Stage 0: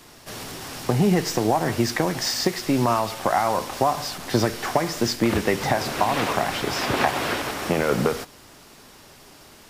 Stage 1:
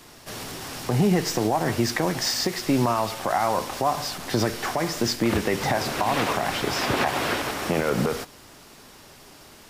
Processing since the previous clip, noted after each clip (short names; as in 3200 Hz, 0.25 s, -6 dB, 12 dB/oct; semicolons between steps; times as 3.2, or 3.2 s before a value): limiter -12 dBFS, peak gain reduction 7.5 dB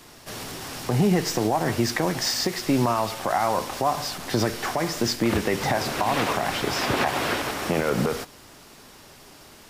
nothing audible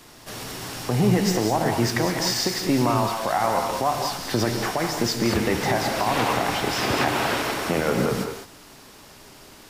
non-linear reverb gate 0.23 s rising, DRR 4 dB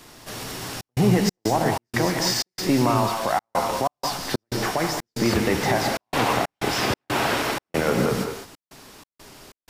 step gate "xxxxx.xx.xx.xxx." 93 bpm -60 dB; gain +1 dB